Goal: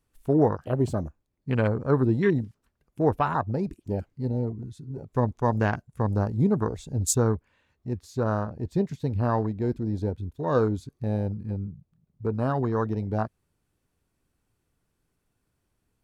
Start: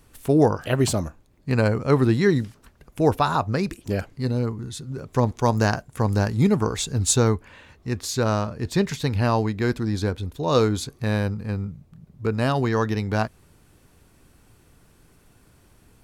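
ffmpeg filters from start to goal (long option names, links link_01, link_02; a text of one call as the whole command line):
ffmpeg -i in.wav -af "afwtdn=0.0447,volume=-3.5dB" out.wav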